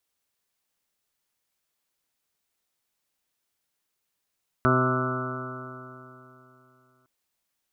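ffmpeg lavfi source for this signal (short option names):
-f lavfi -i "aevalsrc='0.0708*pow(10,-3*t/3.07)*sin(2*PI*127.05*t)+0.0631*pow(10,-3*t/3.07)*sin(2*PI*254.43*t)+0.0562*pow(10,-3*t/3.07)*sin(2*PI*382.44*t)+0.0178*pow(10,-3*t/3.07)*sin(2*PI*511.4*t)+0.0398*pow(10,-3*t/3.07)*sin(2*PI*641.63*t)+0.00944*pow(10,-3*t/3.07)*sin(2*PI*773.44*t)+0.0141*pow(10,-3*t/3.07)*sin(2*PI*907.11*t)+0.0224*pow(10,-3*t/3.07)*sin(2*PI*1042.95*t)+0.0473*pow(10,-3*t/3.07)*sin(2*PI*1181.25*t)+0.0708*pow(10,-3*t/3.07)*sin(2*PI*1322.26*t)+0.0422*pow(10,-3*t/3.07)*sin(2*PI*1466.28*t)':d=2.41:s=44100"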